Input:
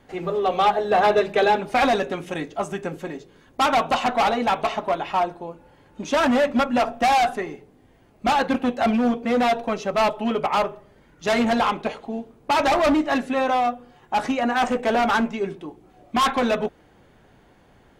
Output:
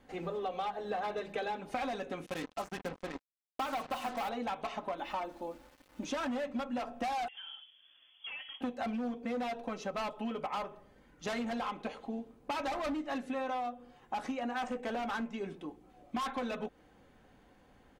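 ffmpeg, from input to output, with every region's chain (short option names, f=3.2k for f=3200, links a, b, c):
-filter_complex "[0:a]asettb=1/sr,asplit=3[a][b][c];[a]atrim=end=2.264[d];[b]atrim=start=2.26:end=4.29,asetpts=PTS-STARTPTS,afade=t=in:d=0.004:c=qsin,afade=t=out:st=2.026:d=0.004:c=qsin,lowpass=5.5k,bandreject=f=50:t=h:w=6,bandreject=f=100:t=h:w=6,bandreject=f=150:t=h:w=6,bandreject=f=200:t=h:w=6,bandreject=f=250:t=h:w=6,bandreject=f=300:t=h:w=6,bandreject=f=350:t=h:w=6,bandreject=f=400:t=h:w=6,bandreject=f=450:t=h:w=6,acrusher=bits=4:mix=0:aa=0.5[e];[c]atrim=start=4.286[f];[d][e]acrossfade=d=0.004:c1=hsin:c2=qsin[g];[g][f]acrossfade=d=0.004:c1=qsin:c2=hsin,asettb=1/sr,asplit=3[h][i][j];[h]atrim=end=4.984[k];[i]atrim=start=4.98:end=6.05,asetpts=PTS-STARTPTS,afade=t=in:d=0.004:c=qsin,afade=t=out:st=1.066:d=0.004:c=qsin,aecho=1:1:3.4:0.64,atrim=end_sample=47187,aeval=exprs='val(0)*gte(abs(val(0)),0.00398)':c=same[l];[j]atrim=start=6.046[m];[k][l]acrossfade=d=0.004:c1=hsin:c2=qsin[n];[n][m]acrossfade=d=0.004:c1=qsin:c2=hsin,asettb=1/sr,asplit=3[o][p][q];[o]atrim=end=7.284[r];[p]atrim=start=7.28:end=8.61,asetpts=PTS-STARTPTS,afade=t=in:d=0.004:c=qsin,afade=t=out:st=1.326:d=0.004:c=qsin,acompressor=threshold=-34dB:ratio=10:attack=3.2:release=140:knee=1:detection=peak,lowpass=f=3k:t=q:w=0.5098,lowpass=f=3k:t=q:w=0.6013,lowpass=f=3k:t=q:w=0.9,lowpass=f=3k:t=q:w=2.563,afreqshift=-3500[s];[q]atrim=start=8.606[t];[r][s]acrossfade=d=0.004:c1=hsin:c2=qsin[u];[u][t]acrossfade=d=0.004:c1=qsin:c2=hsin,aecho=1:1:3.9:0.33,acompressor=threshold=-26dB:ratio=6,volume=-8dB"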